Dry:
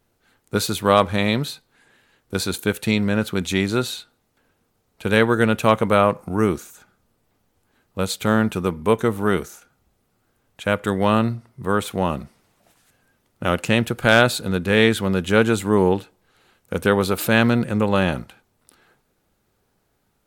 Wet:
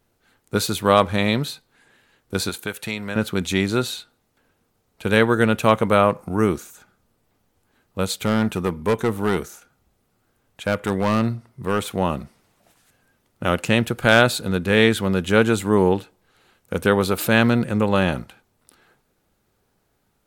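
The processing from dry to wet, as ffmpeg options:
-filter_complex "[0:a]asettb=1/sr,asplit=3[a][b][c];[a]atrim=end=2.494[d];[b]atrim=start=2.49:end=3.16,asetpts=PTS-STARTPTS,afade=t=in:d=0.004:c=qsin,afade=t=out:st=0.666:d=0.004:c=qsin,acrossover=split=600|2900|7900[e][f][g][h];[e]acompressor=threshold=-33dB:ratio=3[i];[f]acompressor=threshold=-28dB:ratio=3[j];[g]acompressor=threshold=-39dB:ratio=3[k];[h]acompressor=threshold=-38dB:ratio=3[l];[i][j][k][l]amix=inputs=4:normalize=0[m];[c]atrim=start=3.156[n];[d][m]acrossfade=d=0.004:c1=hsin:c2=qsin[o];[o][n]acrossfade=d=0.004:c1=qsin:c2=hsin,asettb=1/sr,asplit=3[p][q][r];[p]atrim=end=8.094[s];[q]atrim=start=8.09:end=11.86,asetpts=PTS-STARTPTS,afade=t=in:d=0.004:c=qsin,afade=t=out:st=3.766:d=0.004:c=qsin,asoftclip=type=hard:threshold=-14dB[t];[r]atrim=start=11.856[u];[s][t]acrossfade=d=0.004:c1=hsin:c2=qsin[v];[v][u]acrossfade=d=0.004:c1=qsin:c2=hsin"

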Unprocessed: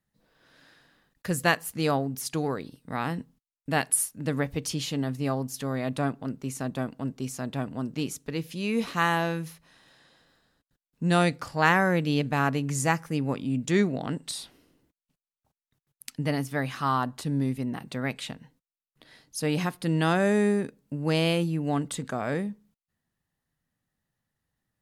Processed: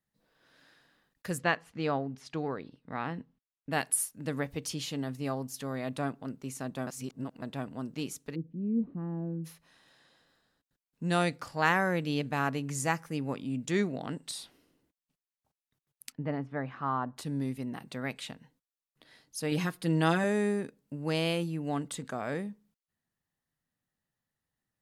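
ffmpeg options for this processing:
-filter_complex "[0:a]asplit=3[a][b][c];[a]afade=t=out:st=1.37:d=0.02[d];[b]lowpass=3.2k,afade=t=in:st=1.37:d=0.02,afade=t=out:st=3.71:d=0.02[e];[c]afade=t=in:st=3.71:d=0.02[f];[d][e][f]amix=inputs=3:normalize=0,asplit=3[g][h][i];[g]afade=t=out:st=8.34:d=0.02[j];[h]lowpass=f=260:t=q:w=1.8,afade=t=in:st=8.34:d=0.02,afade=t=out:st=9.44:d=0.02[k];[i]afade=t=in:st=9.44:d=0.02[l];[j][k][l]amix=inputs=3:normalize=0,asettb=1/sr,asplit=3[m][n][o];[m]atrim=end=16.124[p];[n]atrim=start=16.12:end=17.17,asetpts=PTS-STARTPTS,afade=t=in:d=0.004:c=qsin,afade=t=out:st=1.046:d=0.004:c=qsin,lowpass=1.5k[q];[o]atrim=start=17.166[r];[p][q]acrossfade=d=0.004:c1=hsin:c2=qsin[s];[s][r]acrossfade=d=0.004:c1=qsin:c2=hsin,asettb=1/sr,asplit=3[t][u][v];[t]atrim=end=19.514[w];[u]atrim=start=19.51:end=20.24,asetpts=PTS-STARTPTS,afade=t=in:d=0.004:c=qsin,afade=t=out:st=0.726:d=0.004:c=qsin,aecho=1:1:6.2:0.65,atrim=end_sample=32193[x];[v]atrim=start=20.236[y];[w][x]acrossfade=d=0.004:c1=hsin:c2=qsin[z];[z][y]acrossfade=d=0.004:c1=qsin:c2=hsin,asplit=3[aa][ab][ac];[aa]atrim=end=6.872[ad];[ab]atrim=start=6.868:end=7.422,asetpts=PTS-STARTPTS,areverse[ae];[ac]atrim=start=7.418[af];[ad][ae]acrossfade=d=0.004:c1=hsin:c2=hsin[ag];[ag][af]acrossfade=d=0.004:c1=hsin:c2=hsin,lowshelf=f=150:g=-5,volume=-4.5dB"

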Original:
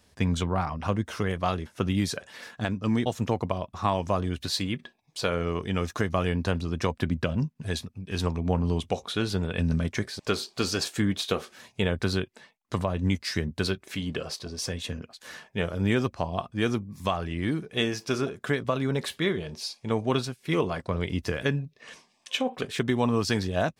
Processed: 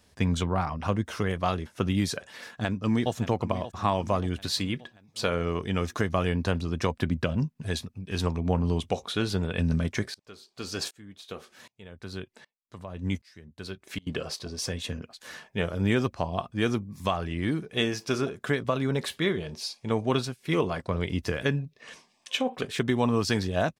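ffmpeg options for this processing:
-filter_complex "[0:a]asplit=2[a][b];[b]afade=t=in:st=2.43:d=0.01,afade=t=out:st=3.13:d=0.01,aecho=0:1:580|1160|1740|2320|2900|3480:0.211349|0.116242|0.063933|0.0351632|0.0193397|0.0106369[c];[a][c]amix=inputs=2:normalize=0,asettb=1/sr,asplit=3[d][e][f];[d]atrim=end=10.144[g];[e]atrim=start=10.14:end=14.07,asetpts=PTS-STARTPTS,afade=t=in:d=0.004:c=qsin,afade=t=out:st=3.926:d=0.004:c=qsin,aeval=exprs='val(0)*pow(10,-27*if(lt(mod(-1.3*n/s,1),2*abs(-1.3)/1000),1-mod(-1.3*n/s,1)/(2*abs(-1.3)/1000),(mod(-1.3*n/s,1)-2*abs(-1.3)/1000)/(1-2*abs(-1.3)/1000))/20)':c=same[h];[f]atrim=start=14.066[i];[g][h]acrossfade=d=0.004:c1=hsin:c2=qsin[j];[j][i]acrossfade=d=0.004:c1=qsin:c2=hsin"

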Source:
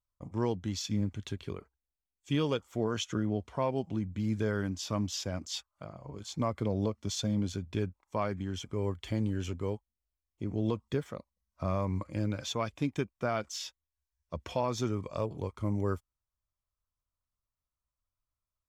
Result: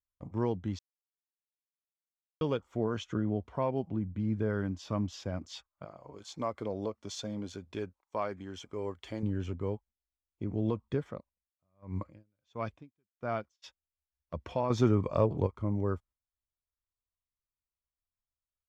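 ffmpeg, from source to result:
-filter_complex "[0:a]asettb=1/sr,asplit=3[a][b][c];[a]atrim=end=3.904[d];[b]atrim=start=3.9:end=4.5,asetpts=PTS-STARTPTS,afade=t=in:d=0.004:c=qsin,afade=t=out:st=0.596:d=0.004:c=qsin,highshelf=f=2.9k:g=-9.5[e];[c]atrim=start=4.496[f];[d][e]acrossfade=d=0.004:c1=hsin:c2=qsin[g];[g][f]acrossfade=d=0.004:c1=qsin:c2=hsin,asettb=1/sr,asplit=3[h][i][j];[h]atrim=end=5.854[k];[i]atrim=start=5.85:end=9.23,asetpts=PTS-STARTPTS,afade=t=in:d=0.004:c=qsin,afade=t=out:st=3.376:d=0.004:c=qsin,bass=f=250:g=-12,treble=f=4k:g=6[l];[j]atrim=start=9.226[m];[k][l]acrossfade=d=0.004:c1=hsin:c2=qsin[n];[n][m]acrossfade=d=0.004:c1=qsin:c2=hsin,asplit=3[o][p][q];[o]afade=t=out:st=11.19:d=0.02[r];[p]aeval=exprs='val(0)*pow(10,-40*(0.5-0.5*cos(2*PI*1.5*n/s))/20)':c=same,afade=t=in:st=11.19:d=0.02,afade=t=out:st=13.62:d=0.02[s];[q]afade=t=in:st=13.62:d=0.02[t];[r][s][t]amix=inputs=3:normalize=0,asettb=1/sr,asplit=3[u][v][w];[u]atrim=end=14.704[x];[v]atrim=start=14.7:end=15.47,asetpts=PTS-STARTPTS,afade=t=in:d=0.004:c=qsin,afade=t=out:st=0.766:d=0.004:c=qsin,acontrast=88[y];[w]atrim=start=15.466[z];[x][y]acrossfade=d=0.004:c1=hsin:c2=qsin[aa];[aa][z]acrossfade=d=0.004:c1=qsin:c2=hsin,asplit=3[ab][ac][ad];[ab]atrim=end=0.79,asetpts=PTS-STARTPTS,afade=t=out:st=0.786:d=0.004:c=hsin[ae];[ac]atrim=start=0.79:end=2.41,asetpts=PTS-STARTPTS,volume=0[af];[ad]atrim=start=2.41,asetpts=PTS-STARTPTS,afade=t=in:d=0.004:c=hsin[ag];[ae][af][ag]concat=n=3:v=0:a=1,aemphasis=mode=reproduction:type=75kf,agate=range=-8dB:threshold=-54dB:ratio=16:detection=peak,adynamicequalizer=threshold=0.00316:dfrequency=1800:dqfactor=0.7:tfrequency=1800:tqfactor=0.7:attack=5:release=100:ratio=0.375:range=2:mode=cutabove:tftype=highshelf"

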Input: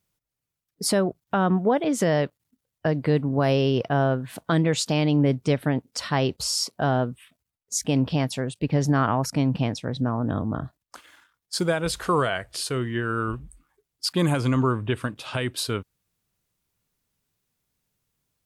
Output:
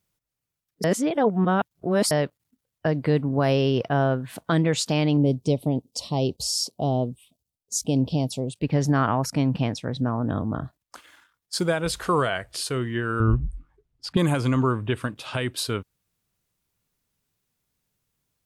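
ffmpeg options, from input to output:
-filter_complex "[0:a]asettb=1/sr,asplit=3[a][b][c];[a]atrim=end=5.174[d];[b]atrim=start=5.17:end=8.53,asetpts=PTS-STARTPTS,afade=t=in:d=0.004:c=qsin,afade=t=out:st=3.356:d=0.004:c=qsin,asuperstop=centerf=1600:order=4:qfactor=0.62[e];[c]atrim=start=8.526[f];[d][e]acrossfade=d=0.004:c1=hsin:c2=qsin[g];[g][f]acrossfade=d=0.004:c1=qsin:c2=hsin,asettb=1/sr,asplit=3[h][i][j];[h]atrim=end=13.204[k];[i]atrim=start=13.2:end=14.17,asetpts=PTS-STARTPTS,afade=t=in:d=0.004:c=qsin,afade=t=out:st=0.966:d=0.004:c=qsin,aemphasis=mode=reproduction:type=riaa[l];[j]atrim=start=14.166[m];[k][l]acrossfade=d=0.004:c1=hsin:c2=qsin[n];[n][m]acrossfade=d=0.004:c1=qsin:c2=hsin,asplit=3[o][p][q];[o]atrim=end=0.842[r];[p]atrim=start=0.838:end=2.112,asetpts=PTS-STARTPTS,areverse[s];[q]atrim=start=2.108[t];[r][s]acrossfade=d=0.004:c1=hsin:c2=hsin[u];[u][t]acrossfade=d=0.004:c1=hsin:c2=hsin"

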